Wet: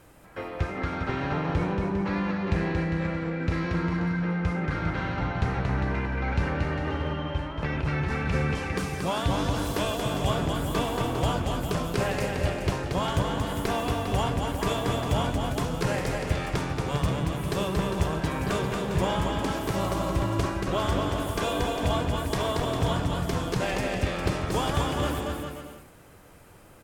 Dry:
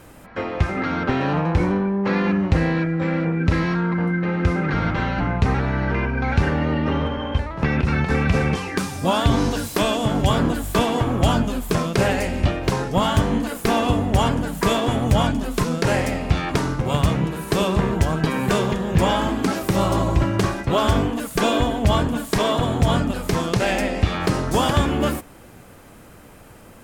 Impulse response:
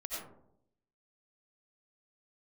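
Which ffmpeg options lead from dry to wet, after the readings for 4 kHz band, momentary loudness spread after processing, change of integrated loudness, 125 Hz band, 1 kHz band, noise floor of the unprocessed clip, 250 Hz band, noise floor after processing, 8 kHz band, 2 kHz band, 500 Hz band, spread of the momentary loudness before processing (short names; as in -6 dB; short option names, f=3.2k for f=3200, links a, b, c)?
-6.5 dB, 3 LU, -7.0 dB, -6.5 dB, -6.5 dB, -45 dBFS, -8.0 dB, -50 dBFS, -6.5 dB, -6.5 dB, -6.5 dB, 4 LU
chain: -filter_complex "[0:a]equalizer=f=230:t=o:w=0.25:g=-8,asplit=2[a][b];[b]aecho=0:1:230|402.5|531.9|628.9|701.7:0.631|0.398|0.251|0.158|0.1[c];[a][c]amix=inputs=2:normalize=0,volume=-8.5dB"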